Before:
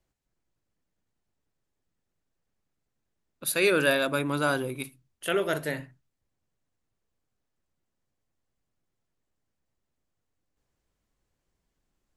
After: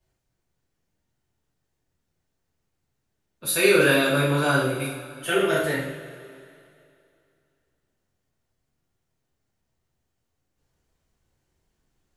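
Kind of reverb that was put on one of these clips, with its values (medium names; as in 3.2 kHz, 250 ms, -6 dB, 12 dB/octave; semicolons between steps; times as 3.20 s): two-slope reverb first 0.58 s, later 2.6 s, from -15 dB, DRR -9 dB; trim -4 dB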